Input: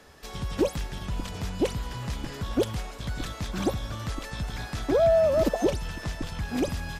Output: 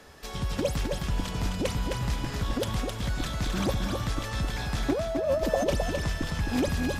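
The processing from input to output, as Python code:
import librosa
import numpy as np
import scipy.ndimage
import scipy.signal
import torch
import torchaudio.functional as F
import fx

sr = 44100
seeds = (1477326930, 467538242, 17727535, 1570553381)

p1 = fx.over_compress(x, sr, threshold_db=-24.0, ratio=-0.5)
y = p1 + fx.echo_single(p1, sr, ms=262, db=-4.5, dry=0)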